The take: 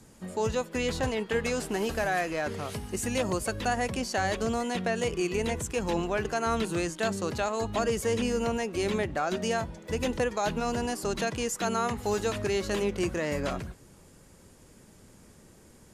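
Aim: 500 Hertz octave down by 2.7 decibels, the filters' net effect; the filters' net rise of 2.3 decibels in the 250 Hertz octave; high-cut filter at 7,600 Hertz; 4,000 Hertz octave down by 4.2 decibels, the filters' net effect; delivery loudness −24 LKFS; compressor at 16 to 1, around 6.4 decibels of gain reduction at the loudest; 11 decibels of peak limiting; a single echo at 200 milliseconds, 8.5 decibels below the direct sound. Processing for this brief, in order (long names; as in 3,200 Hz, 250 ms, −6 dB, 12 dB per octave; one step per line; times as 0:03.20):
low-pass filter 7,600 Hz
parametric band 250 Hz +4 dB
parametric band 500 Hz −4.5 dB
parametric band 4,000 Hz −5.5 dB
downward compressor 16 to 1, threshold −30 dBFS
brickwall limiter −32.5 dBFS
single-tap delay 200 ms −8.5 dB
level +16.5 dB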